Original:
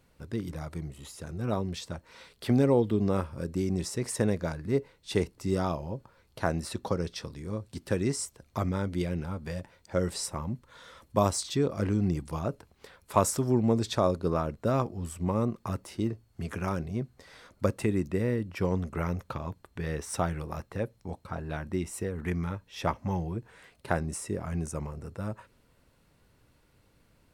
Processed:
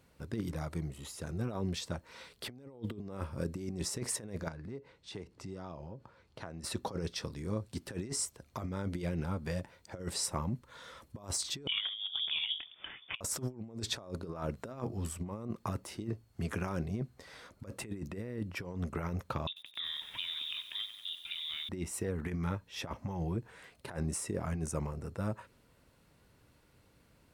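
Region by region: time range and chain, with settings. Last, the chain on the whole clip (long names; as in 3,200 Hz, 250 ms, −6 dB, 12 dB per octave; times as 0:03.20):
0:04.48–0:06.64: high-pass filter 42 Hz + downward compressor 4 to 1, threshold −42 dBFS + high-frequency loss of the air 68 metres
0:11.67–0:13.21: mains-hum notches 50/100/150/200/250/300/350/400 Hz + voice inversion scrambler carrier 3,500 Hz + compressor whose output falls as the input rises −34 dBFS, ratio −0.5
0:14.42–0:15.07: mains-hum notches 60/120/180 Hz + one half of a high-frequency compander encoder only
0:19.47–0:21.69: voice inversion scrambler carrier 3,700 Hz + downward compressor 5 to 1, threshold −35 dBFS + feedback echo at a low word length 93 ms, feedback 80%, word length 9 bits, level −11 dB
whole clip: high-pass filter 43 Hz 6 dB per octave; compressor whose output falls as the input rises −32 dBFS, ratio −0.5; level −3.5 dB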